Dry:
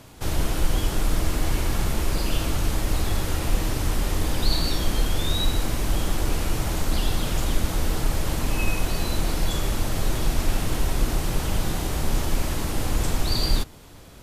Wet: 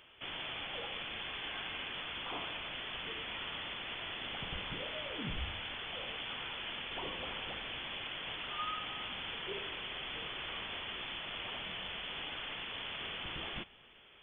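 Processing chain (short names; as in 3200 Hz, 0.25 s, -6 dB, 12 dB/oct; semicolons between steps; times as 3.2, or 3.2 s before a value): Bessel high-pass 590 Hz, order 6; inverted band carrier 3800 Hz; on a send: reverb RT60 2.2 s, pre-delay 63 ms, DRR 23.5 dB; on the sum: gain -6 dB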